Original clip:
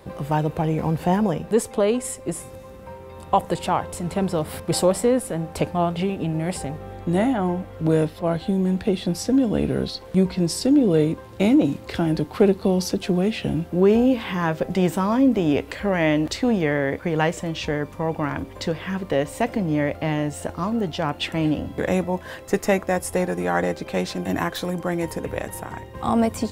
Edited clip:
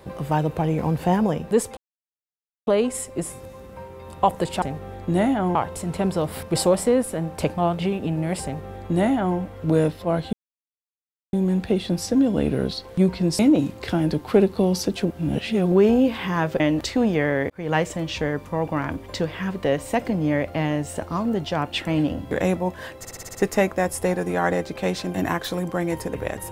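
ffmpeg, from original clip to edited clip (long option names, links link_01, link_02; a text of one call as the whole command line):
ffmpeg -i in.wav -filter_complex "[0:a]asplit=16[link_01][link_02][link_03][link_04][link_05][link_06][link_07][link_08][link_09][link_10][link_11][link_12][link_13][link_14][link_15][link_16];[link_01]atrim=end=1.77,asetpts=PTS-STARTPTS,afade=type=out:start_time=1.766:duration=0.004:curve=hsin,apad=pad_dur=0.9[link_17];[link_02]atrim=start=1.77:end=3.722,asetpts=PTS-STARTPTS,afade=type=in:duration=0.004:curve=hsin[link_18];[link_03]atrim=start=6.608:end=7.542[link_19];[link_04]atrim=start=3.718:end=8.5,asetpts=PTS-STARTPTS,afade=type=out:start_time=4.778:duration=0.004:curve=hsin,apad=pad_dur=1[link_20];[link_05]atrim=start=8.5:end=10.562,asetpts=PTS-STARTPTS,afade=type=in:duration=0.004:curve=hsin[link_21];[link_06]atrim=start=11.448:end=13.112[link_22];[link_07]atrim=start=13.108:end=13.782,asetpts=PTS-STARTPTS,areverse[link_23];[link_08]atrim=start=13.778:end=14.662[link_24];[link_09]atrim=start=16.068:end=16.97,asetpts=PTS-STARTPTS,afade=type=out:start_time=0.898:duration=0.004:curve=hsin[link_25];[link_10]atrim=start=16.97:end=22.522,asetpts=PTS-STARTPTS,afade=type=in:duration=0.27[link_26];[link_11]atrim=start=22.458:end=22.522[link_27];[link_12]atrim=start=22.458:end=22.522[link_28];[link_13]atrim=start=22.458:end=22.522[link_29];[link_14]atrim=start=22.458:end=22.522[link_30];[link_15]atrim=start=22.458:end=22.522[link_31];[link_16]atrim=start=22.458[link_32];[link_17][link_18]concat=n=2:v=0:a=1[link_33];[link_33][link_19]acrossfade=duration=0.004:curve1=hsin:curve2=hsin[link_34];[link_20][link_21]concat=n=2:v=0:a=1[link_35];[link_34][link_35]acrossfade=duration=0.004:curve1=hsin:curve2=hsin[link_36];[link_36][link_22]acrossfade=duration=0.004:curve1=hsin:curve2=hsin[link_37];[link_37][link_23]acrossfade=duration=0.004:curve1=hsin:curve2=hsin[link_38];[link_38][link_24]acrossfade=duration=0.004:curve1=hsin:curve2=hsin[link_39];[link_25][link_26]concat=n=2:v=0:a=1[link_40];[link_39][link_40]acrossfade=duration=0.004:curve1=hsin:curve2=hsin[link_41];[link_41][link_27]acrossfade=duration=0.004:curve1=hsin:curve2=hsin[link_42];[link_42][link_28]acrossfade=duration=0.004:curve1=hsin:curve2=hsin[link_43];[link_43][link_29]acrossfade=duration=0.004:curve1=hsin:curve2=hsin[link_44];[link_44][link_30]acrossfade=duration=0.004:curve1=hsin:curve2=hsin[link_45];[link_45][link_31]acrossfade=duration=0.004:curve1=hsin:curve2=hsin[link_46];[link_46][link_32]acrossfade=duration=0.004:curve1=hsin:curve2=hsin" out.wav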